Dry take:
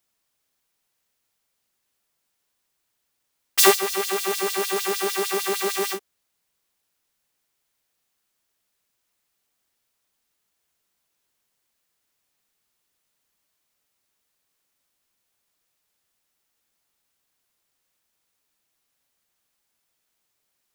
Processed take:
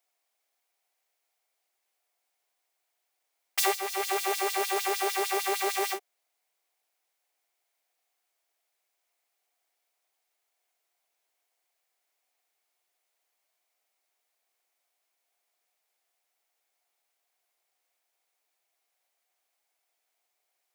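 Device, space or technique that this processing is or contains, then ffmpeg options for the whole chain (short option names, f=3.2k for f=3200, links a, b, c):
laptop speaker: -af "highpass=f=350:w=0.5412,highpass=f=350:w=1.3066,equalizer=f=720:t=o:w=0.4:g=11,equalizer=f=2.2k:t=o:w=0.28:g=6,alimiter=limit=-9dB:level=0:latency=1:release=460,volume=-5dB"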